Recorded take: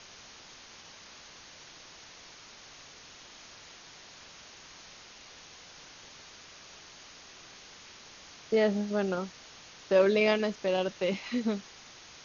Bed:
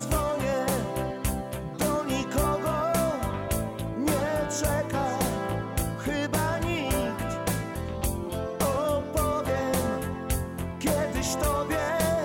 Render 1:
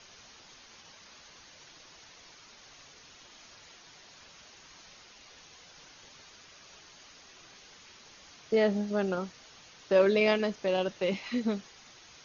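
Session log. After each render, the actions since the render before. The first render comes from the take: denoiser 6 dB, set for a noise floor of -52 dBFS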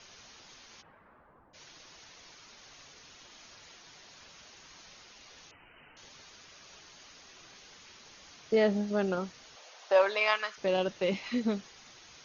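0.81–1.53 LPF 1900 Hz -> 1100 Hz 24 dB/oct; 5.51–5.97 inverted band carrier 3000 Hz; 9.55–10.56 resonant high-pass 510 Hz -> 1400 Hz, resonance Q 2.8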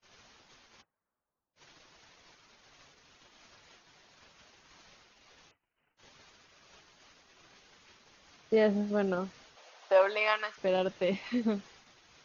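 gate -53 dBFS, range -30 dB; high shelf 5100 Hz -10 dB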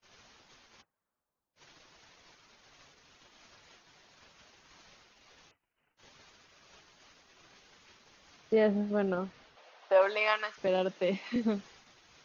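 8.53–10.02 air absorption 130 m; 10.67–11.36 elliptic high-pass 170 Hz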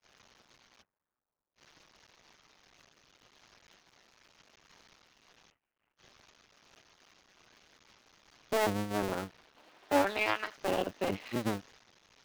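cycle switcher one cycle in 2, muted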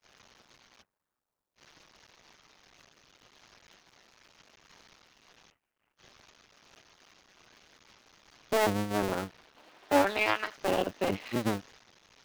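gain +3 dB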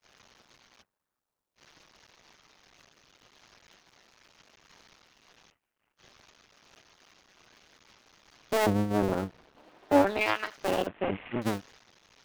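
8.66–10.21 tilt shelf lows +5.5 dB; 10.87–11.42 CVSD 16 kbps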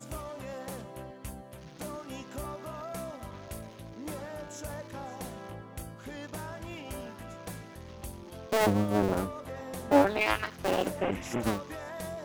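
add bed -13.5 dB

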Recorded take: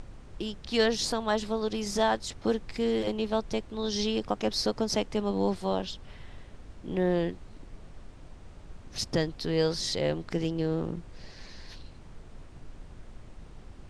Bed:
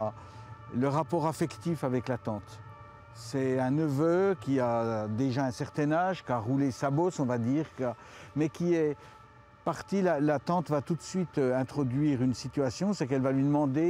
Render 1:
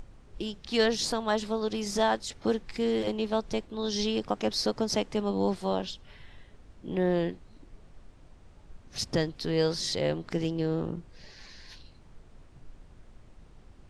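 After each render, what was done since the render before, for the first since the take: noise print and reduce 6 dB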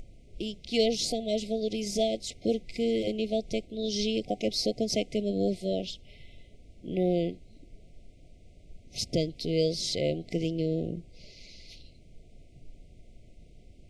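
FFT band-reject 740–2000 Hz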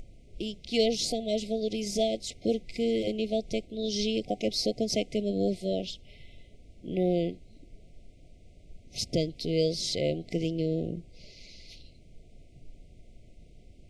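nothing audible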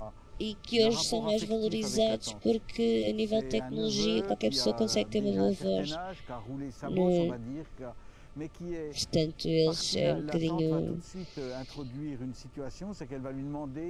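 add bed -11 dB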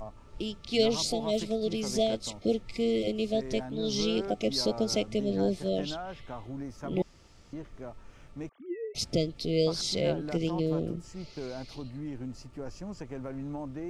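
7.02–7.53 room tone; 8.49–8.95 sine-wave speech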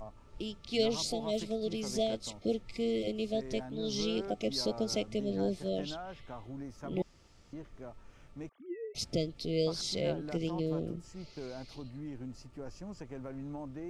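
gain -4.5 dB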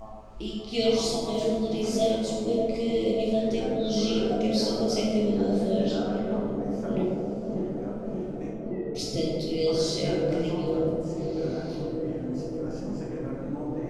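dark delay 0.585 s, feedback 78%, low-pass 700 Hz, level -5 dB; plate-style reverb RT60 1.4 s, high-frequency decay 0.55×, DRR -5 dB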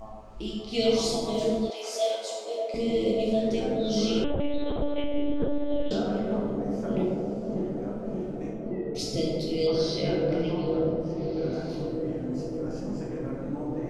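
1.7–2.74 HPF 540 Hz 24 dB/oct; 4.24–5.91 monotone LPC vocoder at 8 kHz 290 Hz; 9.67–11.53 polynomial smoothing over 15 samples

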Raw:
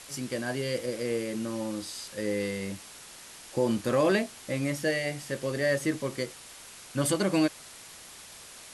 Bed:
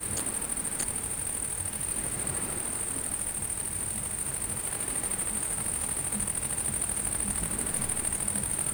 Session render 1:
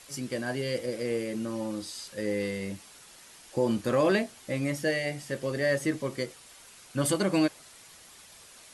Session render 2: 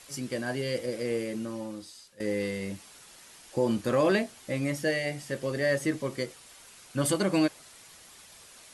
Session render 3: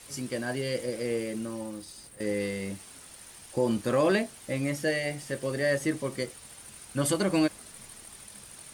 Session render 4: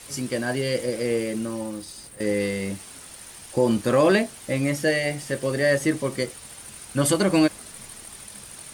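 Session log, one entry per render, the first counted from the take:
denoiser 6 dB, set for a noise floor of -48 dBFS
1.24–2.2 fade out, to -17.5 dB
add bed -19 dB
gain +6 dB

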